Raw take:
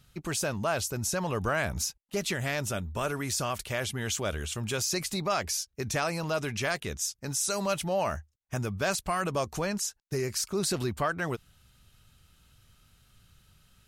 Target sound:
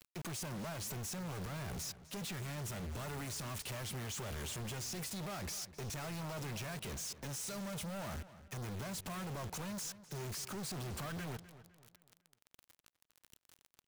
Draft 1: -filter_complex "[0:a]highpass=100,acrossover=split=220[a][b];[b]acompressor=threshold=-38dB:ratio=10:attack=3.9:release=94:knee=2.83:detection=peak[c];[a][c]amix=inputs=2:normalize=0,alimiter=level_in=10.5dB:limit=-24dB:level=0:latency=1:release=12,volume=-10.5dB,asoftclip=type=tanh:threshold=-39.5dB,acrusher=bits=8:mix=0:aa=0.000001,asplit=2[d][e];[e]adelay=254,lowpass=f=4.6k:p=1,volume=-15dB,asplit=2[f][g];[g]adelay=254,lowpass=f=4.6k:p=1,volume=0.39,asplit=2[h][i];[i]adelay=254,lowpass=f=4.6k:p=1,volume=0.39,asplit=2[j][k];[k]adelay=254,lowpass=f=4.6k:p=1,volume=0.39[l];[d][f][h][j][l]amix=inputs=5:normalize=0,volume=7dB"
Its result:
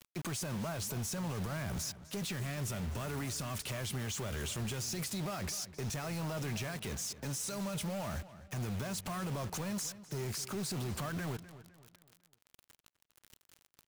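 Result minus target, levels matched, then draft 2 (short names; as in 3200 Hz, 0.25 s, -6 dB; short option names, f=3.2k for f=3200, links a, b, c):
soft clip: distortion -6 dB
-filter_complex "[0:a]highpass=100,acrossover=split=220[a][b];[b]acompressor=threshold=-38dB:ratio=10:attack=3.9:release=94:knee=2.83:detection=peak[c];[a][c]amix=inputs=2:normalize=0,alimiter=level_in=10.5dB:limit=-24dB:level=0:latency=1:release=12,volume=-10.5dB,asoftclip=type=tanh:threshold=-46dB,acrusher=bits=8:mix=0:aa=0.000001,asplit=2[d][e];[e]adelay=254,lowpass=f=4.6k:p=1,volume=-15dB,asplit=2[f][g];[g]adelay=254,lowpass=f=4.6k:p=1,volume=0.39,asplit=2[h][i];[i]adelay=254,lowpass=f=4.6k:p=1,volume=0.39,asplit=2[j][k];[k]adelay=254,lowpass=f=4.6k:p=1,volume=0.39[l];[d][f][h][j][l]amix=inputs=5:normalize=0,volume=7dB"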